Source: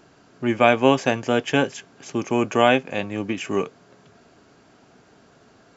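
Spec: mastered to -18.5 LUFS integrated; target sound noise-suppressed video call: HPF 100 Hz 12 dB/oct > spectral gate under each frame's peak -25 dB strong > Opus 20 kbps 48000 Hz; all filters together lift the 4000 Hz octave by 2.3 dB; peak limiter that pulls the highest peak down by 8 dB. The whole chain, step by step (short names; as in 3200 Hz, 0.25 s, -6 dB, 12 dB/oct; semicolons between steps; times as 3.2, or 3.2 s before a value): bell 4000 Hz +3.5 dB; limiter -8.5 dBFS; HPF 100 Hz 12 dB/oct; spectral gate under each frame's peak -25 dB strong; gain +6.5 dB; Opus 20 kbps 48000 Hz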